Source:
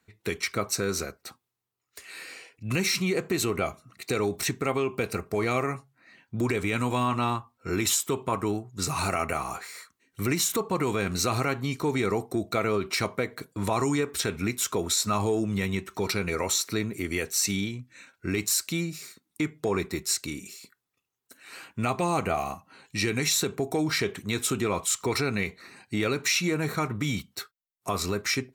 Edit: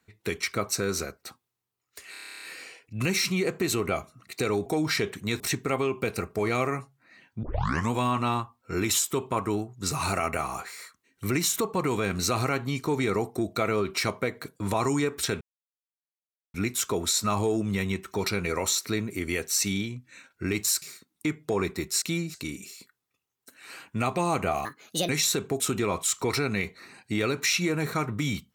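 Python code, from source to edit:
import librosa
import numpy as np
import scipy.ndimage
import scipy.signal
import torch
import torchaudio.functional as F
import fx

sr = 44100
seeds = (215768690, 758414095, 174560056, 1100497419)

y = fx.edit(x, sr, fx.stutter(start_s=2.12, slice_s=0.03, count=11),
    fx.tape_start(start_s=6.39, length_s=0.48),
    fx.insert_silence(at_s=14.37, length_s=1.13),
    fx.move(start_s=18.65, length_s=0.32, to_s=20.17),
    fx.speed_span(start_s=22.48, length_s=0.69, speed=1.57),
    fx.move(start_s=23.68, length_s=0.74, to_s=4.36), tone=tone)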